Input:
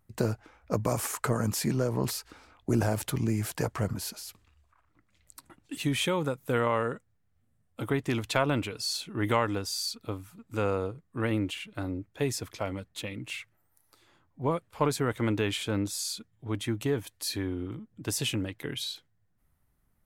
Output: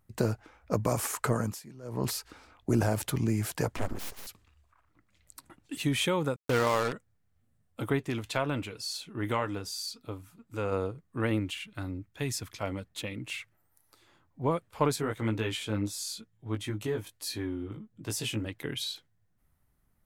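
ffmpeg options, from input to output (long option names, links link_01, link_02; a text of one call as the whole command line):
ffmpeg -i in.wav -filter_complex "[0:a]asettb=1/sr,asplit=3[link_01][link_02][link_03];[link_01]atrim=end=3.764[link_04];[link_02]atrim=start=3.76:end=4.27,asetpts=PTS-STARTPTS,afade=type=in:duration=0.004:curve=qsin,afade=type=out:start_time=0.506:duration=0.004:curve=qsin,aeval=exprs='abs(val(0))':channel_layout=same[link_05];[link_03]atrim=start=4.266[link_06];[link_04][link_05]acrossfade=duration=0.004:curve1=hsin:curve2=qsin[link_07];[link_07][link_06]acrossfade=duration=0.004:curve1=qsin:curve2=hsin,asettb=1/sr,asplit=3[link_08][link_09][link_10];[link_08]atrim=end=6.364[link_11];[link_09]atrim=start=6.36:end=6.93,asetpts=PTS-STARTPTS,afade=type=in:duration=0.004:curve=qsin,afade=type=out:start_time=0.566:duration=0.004:curve=qsin,acrusher=bits=4:mix=0:aa=0.5[link_12];[link_10]atrim=start=6.926[link_13];[link_11][link_12]acrossfade=duration=0.004:curve1=hsin:curve2=qsin[link_14];[link_14][link_13]acrossfade=duration=0.004:curve1=qsin:curve2=hsin,asplit=3[link_15][link_16][link_17];[link_15]afade=type=out:start_time=7.98:duration=0.02[link_18];[link_16]flanger=delay=5.9:depth=3.5:regen=-69:speed=2:shape=triangular,afade=type=in:start_time=7.98:duration=0.02,afade=type=out:start_time=10.71:duration=0.02[link_19];[link_17]afade=type=in:start_time=10.71:duration=0.02[link_20];[link_18][link_19][link_20]amix=inputs=3:normalize=0,asettb=1/sr,asplit=3[link_21][link_22][link_23];[link_21]atrim=end=11.394[link_24];[link_22]atrim=start=11.39:end=12.63,asetpts=PTS-STARTPTS,afade=type=in:duration=0.004:curve=qsin,afade=type=out:start_time=1.236:duration=0.004:curve=qsin,equalizer=frequency=490:width=0.81:gain=-8[link_25];[link_23]atrim=start=12.626[link_26];[link_24][link_25]acrossfade=duration=0.004:curve1=hsin:curve2=qsin[link_27];[link_27][link_26]acrossfade=duration=0.004:curve1=qsin:curve2=hsin,asplit=3[link_28][link_29][link_30];[link_28]afade=type=out:start_time=14.95:duration=0.02[link_31];[link_29]flanger=delay=17.5:depth=2:speed=1.1,afade=type=in:start_time=14.95:duration=0.02,afade=type=out:start_time=18.45:duration=0.02[link_32];[link_30]afade=type=in:start_time=18.45:duration=0.02[link_33];[link_31][link_32][link_33]amix=inputs=3:normalize=0,asplit=3[link_34][link_35][link_36];[link_34]atrim=end=1.62,asetpts=PTS-STARTPTS,afade=type=out:start_time=1.37:duration=0.25:silence=0.0944061[link_37];[link_35]atrim=start=1.62:end=1.82,asetpts=PTS-STARTPTS,volume=-20.5dB[link_38];[link_36]atrim=start=1.82,asetpts=PTS-STARTPTS,afade=type=in:duration=0.25:silence=0.0944061[link_39];[link_37][link_38][link_39]concat=n=3:v=0:a=1" out.wav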